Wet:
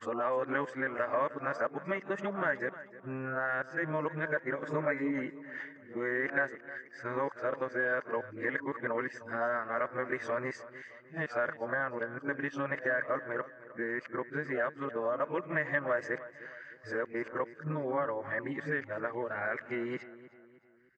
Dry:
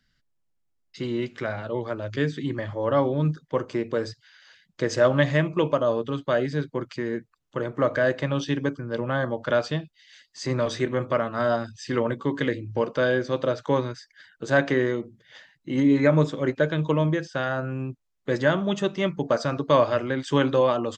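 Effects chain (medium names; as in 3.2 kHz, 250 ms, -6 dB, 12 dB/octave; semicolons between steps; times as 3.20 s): reverse the whole clip; high-pass 550 Hz 6 dB/octave; resonant high shelf 2.6 kHz -12 dB, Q 3; compression 2.5:1, threshold -36 dBFS, peak gain reduction 14.5 dB; on a send: feedback delay 308 ms, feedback 44%, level -16 dB; on the sum: tape noise reduction on one side only decoder only; trim +2 dB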